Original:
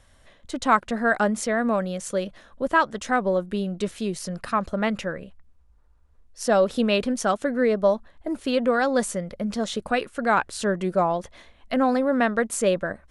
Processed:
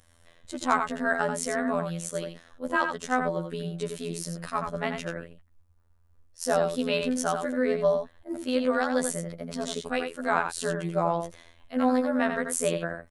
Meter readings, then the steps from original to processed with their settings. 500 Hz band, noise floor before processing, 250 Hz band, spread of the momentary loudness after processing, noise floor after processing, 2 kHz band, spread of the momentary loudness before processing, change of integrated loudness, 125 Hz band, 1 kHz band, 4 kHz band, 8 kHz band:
-4.5 dB, -56 dBFS, -4.5 dB, 10 LU, -61 dBFS, -4.0 dB, 9 LU, -4.0 dB, -2.0 dB, -4.5 dB, -3.5 dB, -0.5 dB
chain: treble shelf 10 kHz +11.5 dB; echo from a far wall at 15 m, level -6 dB; robot voice 84.5 Hz; attacks held to a fixed rise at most 350 dB/s; trim -3 dB

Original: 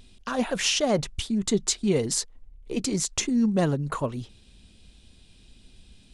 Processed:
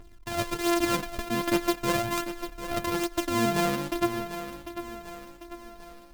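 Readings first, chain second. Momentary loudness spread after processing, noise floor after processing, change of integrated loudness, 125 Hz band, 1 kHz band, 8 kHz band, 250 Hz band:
18 LU, -49 dBFS, -3.0 dB, -6.0 dB, +5.5 dB, -8.5 dB, -2.5 dB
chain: sorted samples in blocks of 128 samples; phaser 0.42 Hz, delay 4.7 ms, feedback 52%; thinning echo 746 ms, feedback 51%, high-pass 160 Hz, level -11 dB; trim -3.5 dB

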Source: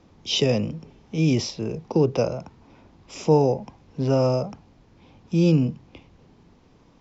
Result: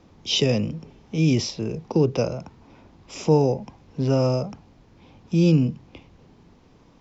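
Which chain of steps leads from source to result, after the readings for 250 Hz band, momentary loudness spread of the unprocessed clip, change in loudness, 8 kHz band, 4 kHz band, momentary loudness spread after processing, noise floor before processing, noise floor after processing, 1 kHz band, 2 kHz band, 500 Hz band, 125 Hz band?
+1.0 dB, 16 LU, +0.5 dB, no reading, +1.5 dB, 16 LU, -56 dBFS, -55 dBFS, -2.0 dB, +1.0 dB, -1.0 dB, +1.5 dB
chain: dynamic bell 750 Hz, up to -4 dB, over -34 dBFS, Q 0.81; trim +1.5 dB

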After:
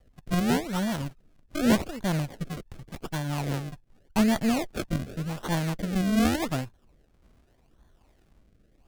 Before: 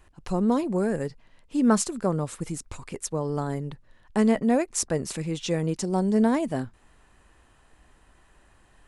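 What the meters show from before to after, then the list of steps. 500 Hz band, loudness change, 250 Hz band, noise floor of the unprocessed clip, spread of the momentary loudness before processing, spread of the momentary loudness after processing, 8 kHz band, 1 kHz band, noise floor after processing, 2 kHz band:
-6.0 dB, -2.0 dB, -2.0 dB, -60 dBFS, 13 LU, 14 LU, -7.0 dB, -1.5 dB, -64 dBFS, +3.5 dB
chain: comb filter that takes the minimum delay 1.1 ms; decimation with a swept rate 34×, swing 100% 0.86 Hz; rotary cabinet horn 5 Hz, later 1.1 Hz, at 4.03 s

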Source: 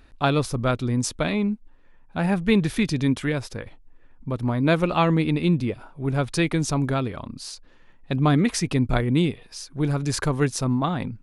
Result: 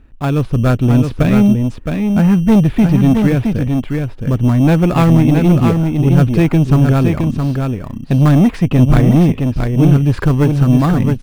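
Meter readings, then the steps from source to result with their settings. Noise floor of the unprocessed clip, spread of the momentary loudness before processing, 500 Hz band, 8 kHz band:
-52 dBFS, 14 LU, +7.5 dB, no reading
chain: FFT filter 210 Hz 0 dB, 630 Hz -8 dB, 2.8 kHz -8 dB, 5.9 kHz -30 dB; level rider gain up to 8 dB; in parallel at -10.5 dB: sample-and-hold 15×; on the sum: saturation -11 dBFS, distortion -13 dB; delay 667 ms -5 dB; trim +6 dB

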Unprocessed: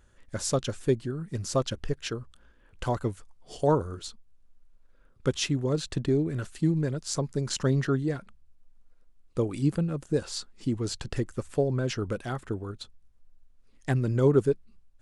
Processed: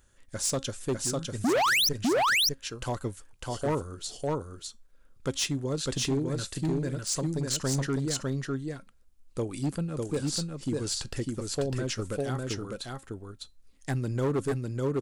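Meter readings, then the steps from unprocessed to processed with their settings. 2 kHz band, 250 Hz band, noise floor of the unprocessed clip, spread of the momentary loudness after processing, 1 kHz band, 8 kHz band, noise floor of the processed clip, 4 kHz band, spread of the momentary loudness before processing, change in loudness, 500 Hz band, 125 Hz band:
+8.5 dB, -1.5 dB, -59 dBFS, 15 LU, +4.0 dB, +6.0 dB, -58 dBFS, +7.0 dB, 12 LU, -0.5 dB, -2.5 dB, -3.0 dB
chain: treble shelf 4.2 kHz +11 dB; feedback comb 270 Hz, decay 0.21 s, harmonics all, mix 40%; painted sound rise, 1.44–1.89 s, 210–6200 Hz -15 dBFS; delay 602 ms -3 dB; overload inside the chain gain 23 dB

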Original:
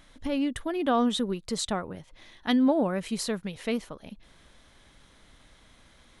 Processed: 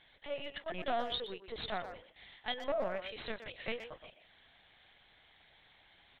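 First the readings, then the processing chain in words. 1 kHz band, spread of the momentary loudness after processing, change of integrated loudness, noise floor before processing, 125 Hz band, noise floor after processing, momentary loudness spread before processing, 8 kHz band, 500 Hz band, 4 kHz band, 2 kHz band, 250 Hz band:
-8.0 dB, 14 LU, -11.5 dB, -58 dBFS, -15.0 dB, -65 dBFS, 14 LU, under -30 dB, -8.0 dB, -6.0 dB, -4.5 dB, -23.0 dB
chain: Bessel high-pass 700 Hz, order 8; peaking EQ 1.2 kHz -11 dB 0.39 oct; valve stage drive 30 dB, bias 0.6; LPC vocoder at 8 kHz pitch kept; speakerphone echo 120 ms, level -9 dB; trim +2 dB

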